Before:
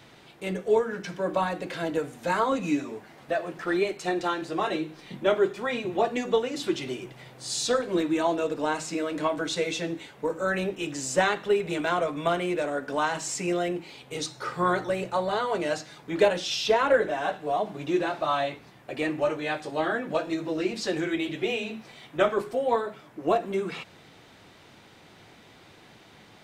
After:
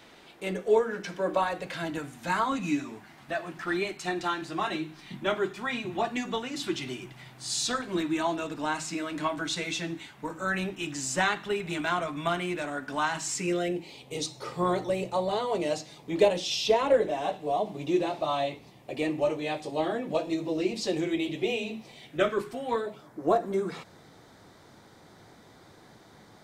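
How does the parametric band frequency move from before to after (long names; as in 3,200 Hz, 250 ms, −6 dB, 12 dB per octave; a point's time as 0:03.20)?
parametric band −13.5 dB 0.6 octaves
0:01.33 120 Hz
0:01.81 490 Hz
0:13.25 490 Hz
0:13.87 1,500 Hz
0:21.92 1,500 Hz
0:22.64 460 Hz
0:23.06 2,700 Hz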